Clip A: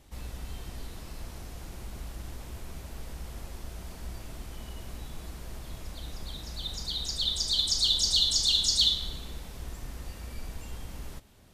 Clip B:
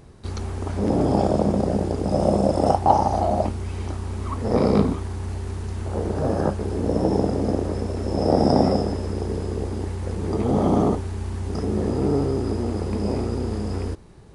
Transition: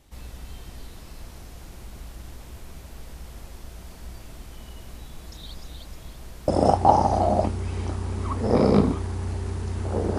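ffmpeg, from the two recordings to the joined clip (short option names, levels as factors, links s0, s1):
-filter_complex "[0:a]apad=whole_dur=10.18,atrim=end=10.18,asplit=2[s0][s1];[s0]atrim=end=5.322[s2];[s1]atrim=start=5.318:end=6.482,asetpts=PTS-STARTPTS,areverse[s3];[1:a]atrim=start=2.488:end=6.19[s4];[s2][s3]acrossfade=d=0.004:c1=hsin:c2=hsin[s5];[s5][s4]acrossfade=d=0.004:c1=hsin:c2=hsin"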